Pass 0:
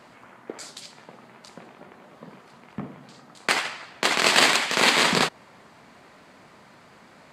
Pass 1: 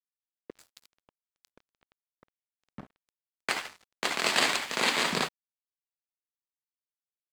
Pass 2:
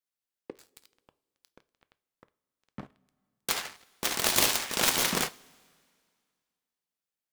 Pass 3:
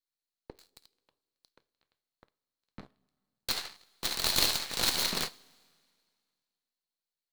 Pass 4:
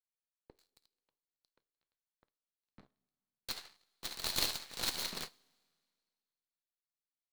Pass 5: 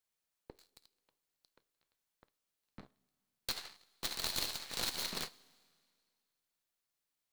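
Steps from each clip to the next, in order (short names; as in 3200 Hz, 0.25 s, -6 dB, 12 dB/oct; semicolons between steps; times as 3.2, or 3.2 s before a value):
crossover distortion -35 dBFS; gain -6.5 dB
self-modulated delay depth 0.75 ms; two-slope reverb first 0.32 s, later 2.1 s, from -18 dB, DRR 14 dB; gain +3 dB
half-wave gain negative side -12 dB; bell 4200 Hz +12.5 dB 0.3 oct; gain -2.5 dB
upward expander 1.5:1, over -38 dBFS; gain -6 dB
compressor 4:1, threshold -42 dBFS, peak gain reduction 13 dB; gain +7.5 dB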